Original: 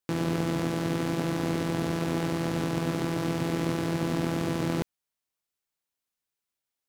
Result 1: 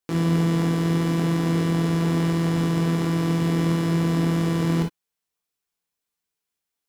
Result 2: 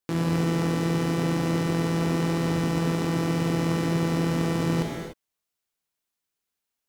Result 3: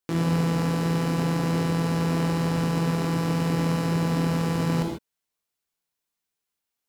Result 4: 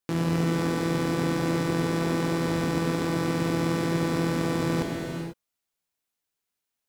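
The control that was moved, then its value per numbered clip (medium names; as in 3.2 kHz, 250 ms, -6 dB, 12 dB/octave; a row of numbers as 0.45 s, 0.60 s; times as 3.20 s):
gated-style reverb, gate: 80 ms, 320 ms, 170 ms, 520 ms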